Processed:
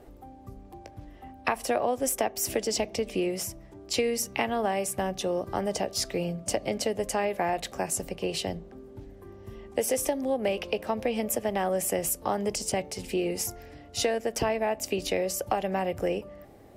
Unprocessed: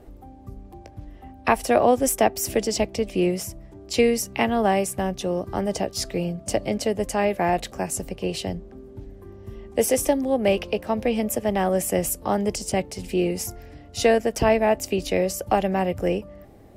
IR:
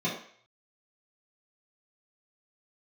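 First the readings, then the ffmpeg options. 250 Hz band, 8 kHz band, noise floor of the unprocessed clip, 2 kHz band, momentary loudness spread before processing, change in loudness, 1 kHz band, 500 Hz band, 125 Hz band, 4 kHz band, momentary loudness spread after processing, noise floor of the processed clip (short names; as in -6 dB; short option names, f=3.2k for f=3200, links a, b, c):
-8.0 dB, -2.0 dB, -46 dBFS, -5.0 dB, 18 LU, -5.5 dB, -6.0 dB, -6.0 dB, -8.0 dB, -2.0 dB, 19 LU, -50 dBFS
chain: -filter_complex "[0:a]lowshelf=f=180:g=-8,acompressor=threshold=-23dB:ratio=6,asplit=2[a][b];[1:a]atrim=start_sample=2205[c];[b][c]afir=irnorm=-1:irlink=0,volume=-29dB[d];[a][d]amix=inputs=2:normalize=0"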